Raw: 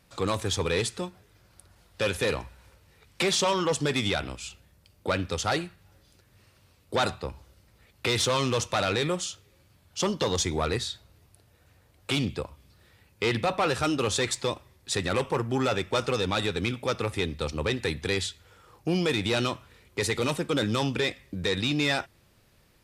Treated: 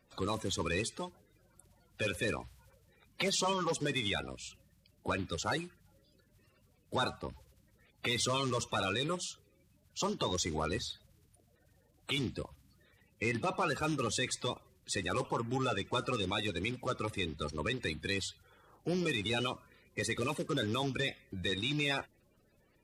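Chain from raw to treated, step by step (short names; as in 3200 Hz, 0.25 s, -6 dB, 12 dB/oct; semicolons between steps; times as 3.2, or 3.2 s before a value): bin magnitudes rounded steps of 30 dB; gain -6.5 dB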